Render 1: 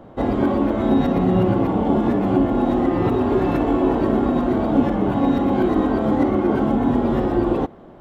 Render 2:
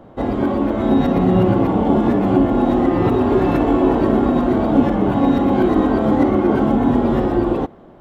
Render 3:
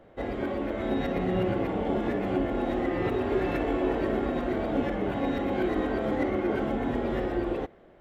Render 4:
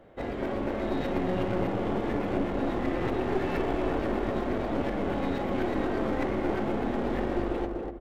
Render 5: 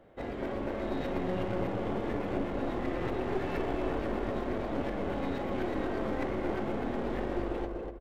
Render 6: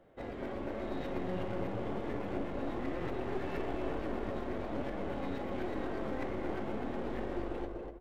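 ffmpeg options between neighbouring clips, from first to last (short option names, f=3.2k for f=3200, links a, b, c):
-af "dynaudnorm=f=190:g=9:m=4dB"
-af "equalizer=f=125:t=o:w=1:g=-5,equalizer=f=250:t=o:w=1:g=-6,equalizer=f=500:t=o:w=1:g=3,equalizer=f=1k:t=o:w=1:g=-7,equalizer=f=2k:t=o:w=1:g=8,volume=-9dB"
-filter_complex "[0:a]asplit=2[a][b];[b]adelay=245,lowpass=f=1.1k:p=1,volume=-3dB,asplit=2[c][d];[d]adelay=245,lowpass=f=1.1k:p=1,volume=0.36,asplit=2[e][f];[f]adelay=245,lowpass=f=1.1k:p=1,volume=0.36,asplit=2[g][h];[h]adelay=245,lowpass=f=1.1k:p=1,volume=0.36,asplit=2[i][j];[j]adelay=245,lowpass=f=1.1k:p=1,volume=0.36[k];[a][c][e][g][i][k]amix=inputs=6:normalize=0,aeval=exprs='clip(val(0),-1,0.0224)':c=same"
-af "aecho=1:1:247:0.178,volume=-4dB"
-af "flanger=delay=5.3:depth=8.2:regen=80:speed=1:shape=triangular"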